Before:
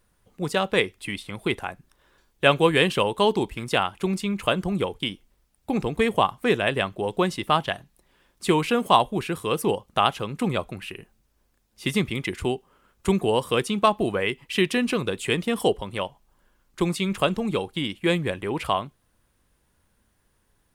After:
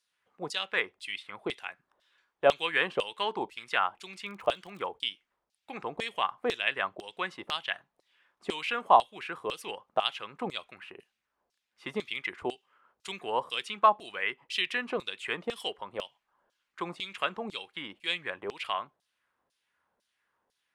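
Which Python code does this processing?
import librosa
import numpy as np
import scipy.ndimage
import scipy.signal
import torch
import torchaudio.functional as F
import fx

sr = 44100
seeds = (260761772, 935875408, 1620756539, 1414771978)

y = fx.filter_lfo_bandpass(x, sr, shape='saw_down', hz=2.0, low_hz=600.0, high_hz=5200.0, q=1.6)
y = fx.dmg_crackle(y, sr, seeds[0], per_s=46.0, level_db=-41.0, at=(4.23, 4.88), fade=0.02)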